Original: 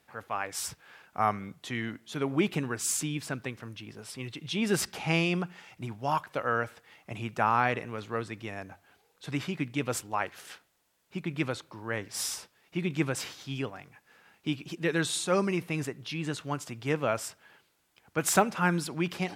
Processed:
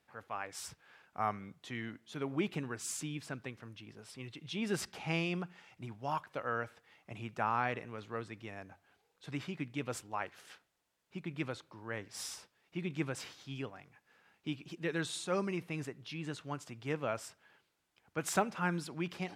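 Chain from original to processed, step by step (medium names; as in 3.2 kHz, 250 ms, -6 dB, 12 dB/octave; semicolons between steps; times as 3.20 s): treble shelf 10 kHz -8.5 dB; trim -7.5 dB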